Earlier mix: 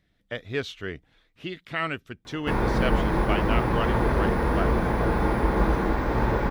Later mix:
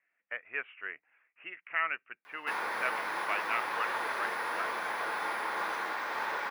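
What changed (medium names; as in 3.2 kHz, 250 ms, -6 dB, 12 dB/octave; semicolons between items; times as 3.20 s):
speech: add steep low-pass 2.7 kHz 96 dB/octave; master: add high-pass 1.2 kHz 12 dB/octave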